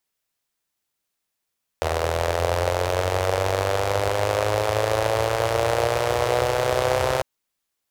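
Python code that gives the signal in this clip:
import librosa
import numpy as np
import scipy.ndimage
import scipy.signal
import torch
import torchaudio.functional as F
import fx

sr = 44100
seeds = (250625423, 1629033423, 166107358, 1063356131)

y = fx.engine_four_rev(sr, seeds[0], length_s=5.4, rpm=2400, resonances_hz=(89.0, 530.0), end_rpm=3900)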